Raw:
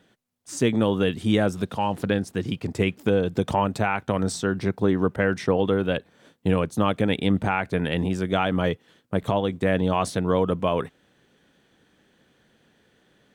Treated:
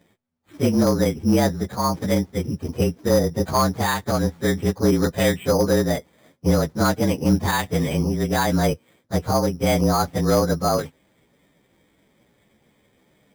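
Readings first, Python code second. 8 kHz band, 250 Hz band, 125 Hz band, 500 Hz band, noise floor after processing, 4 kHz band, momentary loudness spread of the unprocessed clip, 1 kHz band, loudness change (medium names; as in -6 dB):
+8.5 dB, +3.0 dB, +4.0 dB, +2.5 dB, -64 dBFS, +3.5 dB, 6 LU, +2.5 dB, +3.0 dB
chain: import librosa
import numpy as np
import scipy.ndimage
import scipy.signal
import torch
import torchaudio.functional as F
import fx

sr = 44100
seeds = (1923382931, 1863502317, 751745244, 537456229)

y = fx.partial_stretch(x, sr, pct=112)
y = np.clip(y, -10.0 ** (-15.5 / 20.0), 10.0 ** (-15.5 / 20.0))
y = np.repeat(scipy.signal.resample_poly(y, 1, 8), 8)[:len(y)]
y = y * 10.0 ** (5.0 / 20.0)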